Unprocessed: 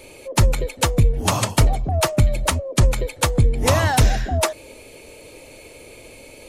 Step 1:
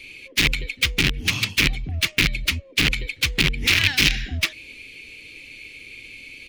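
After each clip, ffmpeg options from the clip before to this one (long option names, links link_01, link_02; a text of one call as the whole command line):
ffmpeg -i in.wav -af "aeval=exprs='(mod(3.35*val(0)+1,2)-1)/3.35':channel_layout=same,firequalizer=gain_entry='entry(280,0);entry(620,-18);entry(2300,15);entry(7900,-5)':delay=0.05:min_phase=1,volume=-5.5dB" out.wav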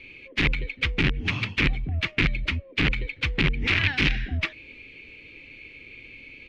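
ffmpeg -i in.wav -af "lowpass=2100" out.wav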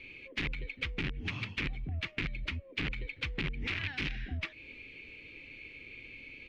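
ffmpeg -i in.wav -af "acompressor=threshold=-31dB:ratio=3,volume=-4dB" out.wav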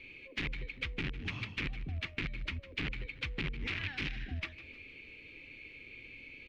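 ffmpeg -i in.wav -af "aecho=1:1:154|308|462|616:0.158|0.0682|0.0293|0.0126,volume=-2dB" out.wav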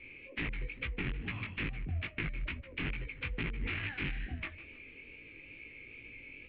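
ffmpeg -i in.wav -af "lowpass=frequency=2800:width=0.5412,lowpass=frequency=2800:width=1.3066,flanger=delay=17:depth=5.4:speed=2.3,volume=4dB" out.wav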